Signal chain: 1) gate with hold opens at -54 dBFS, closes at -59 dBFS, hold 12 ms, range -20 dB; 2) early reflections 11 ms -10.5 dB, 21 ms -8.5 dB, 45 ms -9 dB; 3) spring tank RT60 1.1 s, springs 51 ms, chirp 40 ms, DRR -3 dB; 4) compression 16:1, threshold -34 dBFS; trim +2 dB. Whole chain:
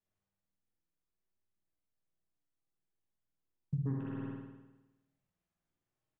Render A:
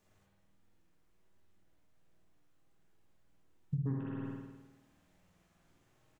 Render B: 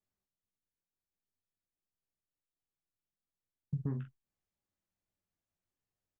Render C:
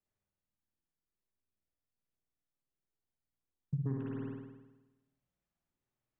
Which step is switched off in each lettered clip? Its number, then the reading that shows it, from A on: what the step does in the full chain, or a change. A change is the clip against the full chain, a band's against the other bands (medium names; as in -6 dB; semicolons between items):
1, momentary loudness spread change +5 LU; 3, momentary loudness spread change -4 LU; 2, momentary loudness spread change +4 LU